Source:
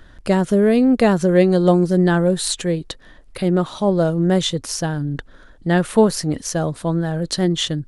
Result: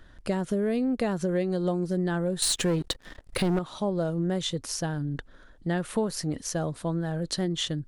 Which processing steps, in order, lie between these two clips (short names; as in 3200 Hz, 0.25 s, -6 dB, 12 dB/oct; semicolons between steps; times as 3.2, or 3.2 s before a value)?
2.42–3.59 sample leveller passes 3; compressor 4:1, threshold -17 dBFS, peak gain reduction 8 dB; gain -7 dB